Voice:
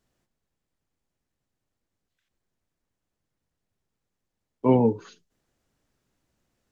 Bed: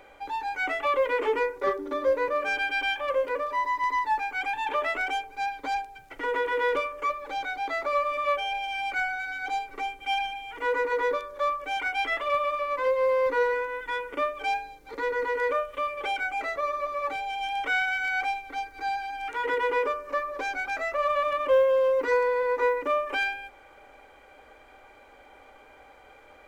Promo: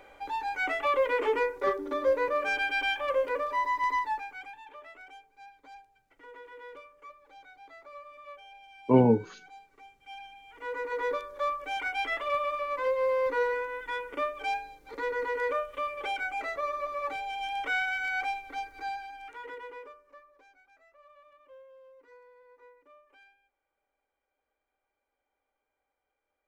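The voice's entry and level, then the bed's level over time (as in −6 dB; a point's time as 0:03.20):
4.25 s, −1.0 dB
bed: 0:03.95 −1.5 dB
0:04.70 −21 dB
0:09.91 −21 dB
0:11.14 −3.5 dB
0:18.73 −3.5 dB
0:20.64 −32 dB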